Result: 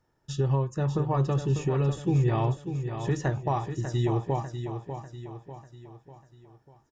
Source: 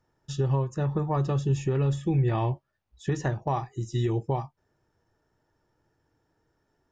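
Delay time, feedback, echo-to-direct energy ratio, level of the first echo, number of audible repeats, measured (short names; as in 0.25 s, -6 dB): 0.595 s, 47%, -7.5 dB, -8.5 dB, 5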